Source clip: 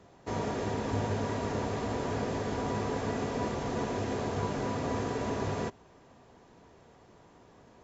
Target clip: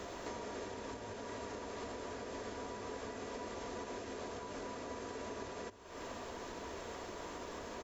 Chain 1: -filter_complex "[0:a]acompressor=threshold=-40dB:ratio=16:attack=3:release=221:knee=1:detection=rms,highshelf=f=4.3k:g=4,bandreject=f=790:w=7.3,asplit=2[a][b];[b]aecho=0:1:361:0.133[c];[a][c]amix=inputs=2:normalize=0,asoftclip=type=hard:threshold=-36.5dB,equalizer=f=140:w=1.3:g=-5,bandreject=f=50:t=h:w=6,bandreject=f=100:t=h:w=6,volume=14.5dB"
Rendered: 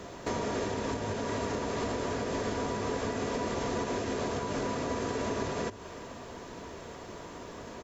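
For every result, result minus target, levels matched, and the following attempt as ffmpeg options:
compressor: peak gain reduction -10.5 dB; 125 Hz band +4.0 dB
-filter_complex "[0:a]acompressor=threshold=-51dB:ratio=16:attack=3:release=221:knee=1:detection=rms,highshelf=f=4.3k:g=4,bandreject=f=790:w=7.3,asplit=2[a][b];[b]aecho=0:1:361:0.133[c];[a][c]amix=inputs=2:normalize=0,asoftclip=type=hard:threshold=-36.5dB,equalizer=f=140:w=1.3:g=-5,bandreject=f=50:t=h:w=6,bandreject=f=100:t=h:w=6,volume=14.5dB"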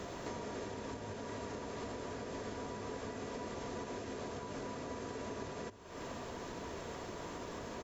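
125 Hz band +4.5 dB
-filter_complex "[0:a]acompressor=threshold=-51dB:ratio=16:attack=3:release=221:knee=1:detection=rms,highshelf=f=4.3k:g=4,bandreject=f=790:w=7.3,asplit=2[a][b];[b]aecho=0:1:361:0.133[c];[a][c]amix=inputs=2:normalize=0,asoftclip=type=hard:threshold=-36.5dB,equalizer=f=140:w=1.3:g=-14.5,bandreject=f=50:t=h:w=6,bandreject=f=100:t=h:w=6,volume=14.5dB"

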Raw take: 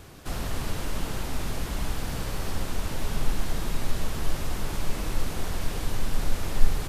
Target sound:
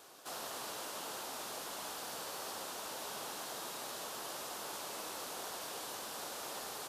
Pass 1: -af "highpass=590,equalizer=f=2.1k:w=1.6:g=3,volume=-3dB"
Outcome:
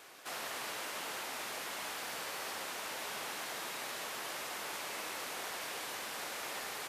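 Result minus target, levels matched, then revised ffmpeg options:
2000 Hz band +5.0 dB
-af "highpass=590,equalizer=f=2.1k:w=1.6:g=-8,volume=-3dB"

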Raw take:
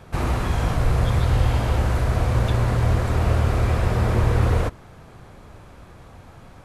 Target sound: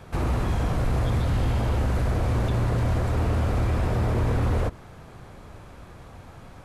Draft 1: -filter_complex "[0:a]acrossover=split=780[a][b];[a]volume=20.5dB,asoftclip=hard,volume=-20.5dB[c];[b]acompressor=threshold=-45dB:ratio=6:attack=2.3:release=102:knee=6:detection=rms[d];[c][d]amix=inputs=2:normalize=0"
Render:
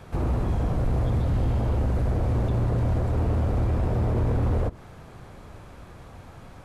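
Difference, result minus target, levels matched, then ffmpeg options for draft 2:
compressor: peak gain reduction +9 dB
-filter_complex "[0:a]acrossover=split=780[a][b];[a]volume=20.5dB,asoftclip=hard,volume=-20.5dB[c];[b]acompressor=threshold=-34.5dB:ratio=6:attack=2.3:release=102:knee=6:detection=rms[d];[c][d]amix=inputs=2:normalize=0"

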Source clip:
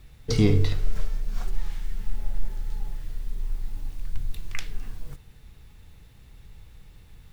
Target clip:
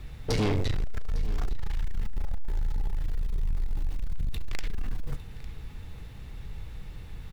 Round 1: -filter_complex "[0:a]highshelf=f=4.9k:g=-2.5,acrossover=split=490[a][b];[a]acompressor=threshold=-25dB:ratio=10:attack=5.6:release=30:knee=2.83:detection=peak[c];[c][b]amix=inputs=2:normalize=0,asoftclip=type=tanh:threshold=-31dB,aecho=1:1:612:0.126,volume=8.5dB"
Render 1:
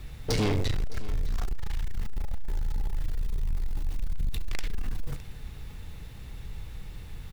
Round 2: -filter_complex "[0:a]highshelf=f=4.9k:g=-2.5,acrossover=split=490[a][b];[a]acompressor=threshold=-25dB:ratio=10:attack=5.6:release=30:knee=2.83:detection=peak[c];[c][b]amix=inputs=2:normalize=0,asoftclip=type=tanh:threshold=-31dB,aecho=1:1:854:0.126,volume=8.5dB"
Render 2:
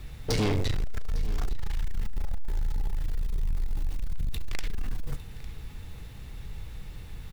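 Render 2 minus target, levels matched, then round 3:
8000 Hz band +3.5 dB
-filter_complex "[0:a]highshelf=f=4.9k:g=-9,acrossover=split=490[a][b];[a]acompressor=threshold=-25dB:ratio=10:attack=5.6:release=30:knee=2.83:detection=peak[c];[c][b]amix=inputs=2:normalize=0,asoftclip=type=tanh:threshold=-31dB,aecho=1:1:854:0.126,volume=8.5dB"

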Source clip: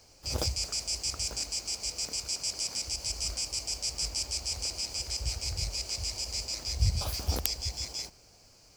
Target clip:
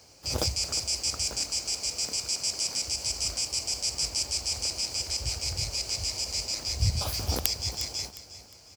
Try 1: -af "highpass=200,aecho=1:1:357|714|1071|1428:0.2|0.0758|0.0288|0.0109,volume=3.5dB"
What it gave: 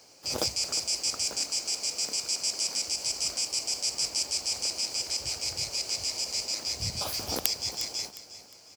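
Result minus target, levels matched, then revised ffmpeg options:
125 Hz band -11.0 dB
-af "highpass=73,aecho=1:1:357|714|1071|1428:0.2|0.0758|0.0288|0.0109,volume=3.5dB"

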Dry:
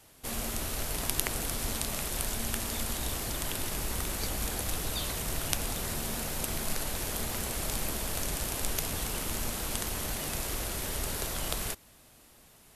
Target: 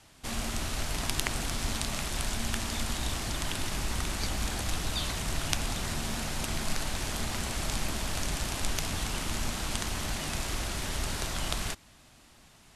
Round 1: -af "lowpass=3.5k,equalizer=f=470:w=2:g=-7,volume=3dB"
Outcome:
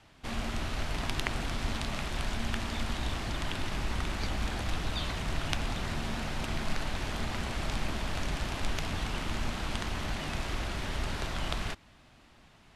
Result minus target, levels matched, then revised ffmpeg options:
8000 Hz band -8.5 dB
-af "lowpass=7.3k,equalizer=f=470:w=2:g=-7,volume=3dB"

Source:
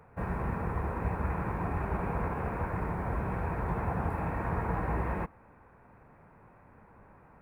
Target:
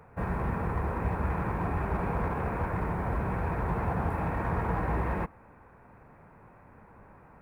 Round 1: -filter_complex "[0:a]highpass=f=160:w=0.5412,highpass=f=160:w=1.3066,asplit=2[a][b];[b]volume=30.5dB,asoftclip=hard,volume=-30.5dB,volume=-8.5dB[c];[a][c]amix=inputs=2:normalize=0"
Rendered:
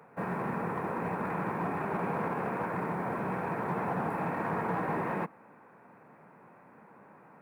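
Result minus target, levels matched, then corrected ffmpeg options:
125 Hz band -5.5 dB
-filter_complex "[0:a]asplit=2[a][b];[b]volume=30.5dB,asoftclip=hard,volume=-30.5dB,volume=-8.5dB[c];[a][c]amix=inputs=2:normalize=0"

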